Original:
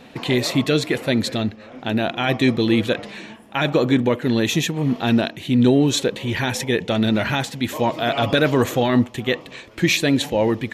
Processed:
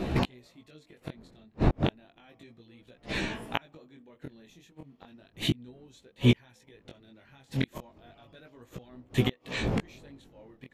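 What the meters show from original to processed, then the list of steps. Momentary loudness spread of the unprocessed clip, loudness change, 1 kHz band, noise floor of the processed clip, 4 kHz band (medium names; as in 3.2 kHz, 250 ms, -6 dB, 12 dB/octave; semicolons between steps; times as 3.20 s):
8 LU, -10.5 dB, -15.5 dB, -64 dBFS, -14.5 dB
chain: wind noise 310 Hz -28 dBFS; inverted gate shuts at -15 dBFS, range -39 dB; chorus 0.33 Hz, delay 15.5 ms, depth 7.4 ms; trim +6.5 dB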